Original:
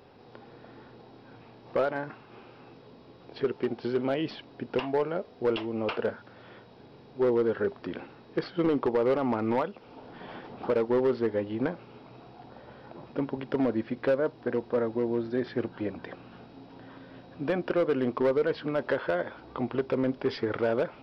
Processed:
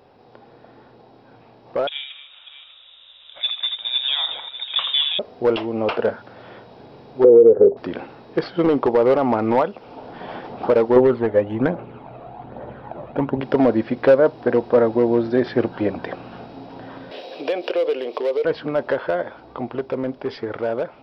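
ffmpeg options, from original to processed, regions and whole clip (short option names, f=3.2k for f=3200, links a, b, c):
-filter_complex "[0:a]asettb=1/sr,asplit=3[a][b][c];[a]atrim=end=1.874[d];[b]atrim=start=1.87:end=5.19,asetpts=PTS-STARTPTS,afade=t=in:d=0.004:c=qsin,afade=t=out:st=3.316:d=0.004:c=qsin,aecho=1:1:82|233|596:0.422|0.237|0.2,atrim=end_sample=146412,lowpass=f=3.3k:t=q:w=0.5098,lowpass=f=3.3k:t=q:w=0.6013,lowpass=f=3.3k:t=q:w=0.9,lowpass=f=3.3k:t=q:w=2.563,afreqshift=-3900[e];[c]atrim=start=5.186[f];[d][e]acrossfade=d=0.004:c1=hsin:c2=qsin[g];[g][f]acrossfade=d=0.004:c1=qsin:c2=hsin,asettb=1/sr,asplit=3[h][i][j];[h]atrim=end=7.244[k];[i]atrim=start=7.24:end=7.77,asetpts=PTS-STARTPTS,afade=t=in:d=0.004:c=qsin,afade=t=out:st=0.526:d=0.004:c=qsin,lowpass=f=470:t=q:w=4.9,acompressor=threshold=-15dB:ratio=6:attack=3.2:release=140:knee=1:detection=peak[l];[j]atrim=start=7.766[m];[k][l]acrossfade=d=0.004:c1=hsin:c2=qsin[n];[n][m]acrossfade=d=0.004:c1=qsin:c2=hsin,asettb=1/sr,asplit=3[o][p][q];[o]atrim=end=10.964[r];[p]atrim=start=10.96:end=13.41,asetpts=PTS-STARTPTS,afade=t=in:d=0.004:c=qsin,afade=t=out:st=2.446:d=0.004:c=qsin,lowpass=f=4k:w=0.5412,lowpass=f=4k:w=1.3066,adynamicsmooth=sensitivity=3:basefreq=3k,aphaser=in_gain=1:out_gain=1:delay=1.8:decay=0.44:speed=1.2:type=triangular[s];[q]atrim=start=13.406[t];[r][s]acrossfade=d=0.004:c1=hsin:c2=qsin[u];[u][t]acrossfade=d=0.004:c1=qsin:c2=hsin,asettb=1/sr,asplit=3[v][w][x];[v]atrim=end=17.114[y];[w]atrim=start=17.11:end=18.45,asetpts=PTS-STARTPTS,afade=t=in:d=0.004:c=qsin,afade=t=out:st=1.336:d=0.004:c=qsin,highshelf=f=2k:t=q:w=1.5:g=10.5,acompressor=threshold=-32dB:ratio=10:attack=3.2:release=140:knee=1:detection=peak,highpass=f=460:t=q:w=2.6[z];[x]atrim=start=18.446[aa];[y][z]acrossfade=d=0.004:c1=hsin:c2=qsin[ab];[ab][aa]acrossfade=d=0.004:c1=qsin:c2=hsin,equalizer=f=690:t=o:w=1:g=5.5,dynaudnorm=f=350:g=21:m=11dB"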